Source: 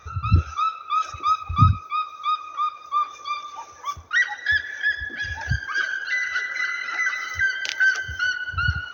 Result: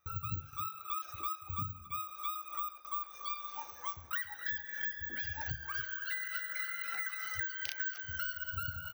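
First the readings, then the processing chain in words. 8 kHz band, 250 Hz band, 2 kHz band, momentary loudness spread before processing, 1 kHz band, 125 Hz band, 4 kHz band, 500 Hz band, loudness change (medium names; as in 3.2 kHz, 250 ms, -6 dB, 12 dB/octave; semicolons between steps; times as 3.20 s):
no reading, -20.5 dB, -16.5 dB, 8 LU, -16.0 dB, -20.5 dB, -14.0 dB, -13.5 dB, -14.0 dB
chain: de-hum 73.12 Hz, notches 33; careless resampling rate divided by 2×, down none, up zero stuff; compression 12:1, threshold -26 dBFS, peak gain reduction 20.5 dB; echo from a far wall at 48 m, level -14 dB; Chebyshev shaper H 5 -28 dB, 7 -26 dB, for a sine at -6.5 dBFS; band-stop 440 Hz, Q 12; gate with hold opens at -34 dBFS; trim -5.5 dB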